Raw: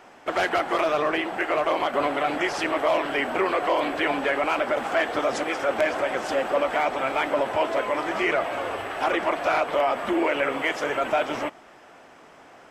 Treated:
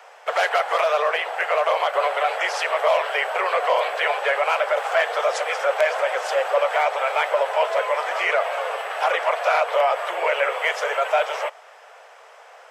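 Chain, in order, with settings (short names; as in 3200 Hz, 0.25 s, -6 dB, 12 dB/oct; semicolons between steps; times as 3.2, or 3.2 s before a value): steep high-pass 450 Hz 72 dB/oct; gain +3.5 dB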